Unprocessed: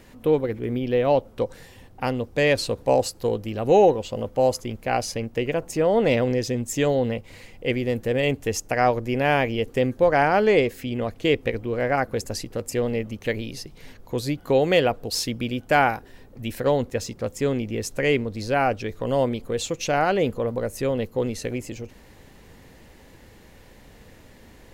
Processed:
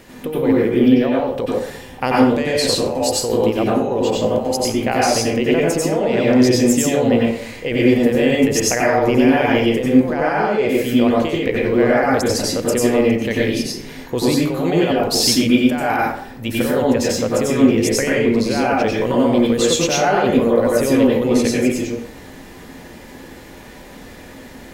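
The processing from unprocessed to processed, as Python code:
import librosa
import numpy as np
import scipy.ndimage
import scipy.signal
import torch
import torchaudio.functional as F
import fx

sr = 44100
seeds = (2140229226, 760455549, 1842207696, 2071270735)

y = fx.low_shelf(x, sr, hz=120.0, db=-8.0)
y = fx.over_compress(y, sr, threshold_db=-25.0, ratio=-1.0)
y = fx.rev_plate(y, sr, seeds[0], rt60_s=0.59, hf_ratio=0.6, predelay_ms=80, drr_db=-4.5)
y = y * 10.0 ** (4.0 / 20.0)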